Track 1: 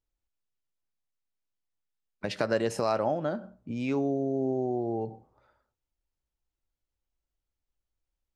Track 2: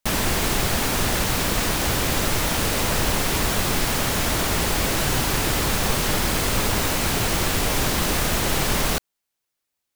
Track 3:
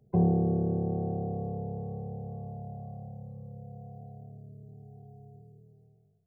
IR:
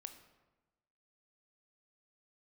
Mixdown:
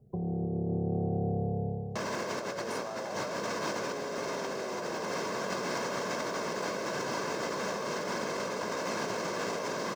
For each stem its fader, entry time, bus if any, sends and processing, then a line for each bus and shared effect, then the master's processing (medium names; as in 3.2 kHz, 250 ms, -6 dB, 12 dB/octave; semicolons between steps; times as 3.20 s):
0.0 dB, 0.00 s, no send, high-pass 420 Hz 24 dB/octave
-3.0 dB, 1.90 s, send -8.5 dB, Chebyshev band-pass 210–5700 Hz, order 3; comb 1.9 ms, depth 54%; modulation noise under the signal 30 dB
-2.5 dB, 0.00 s, send -8 dB, low-pass 1 kHz 24 dB/octave; peak limiter -24.5 dBFS, peak gain reduction 9 dB; auto duck -14 dB, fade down 0.55 s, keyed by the first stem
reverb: on, RT60 1.1 s, pre-delay 19 ms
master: peaking EQ 3.3 kHz -12.5 dB 1.7 oct; compressor with a negative ratio -34 dBFS, ratio -1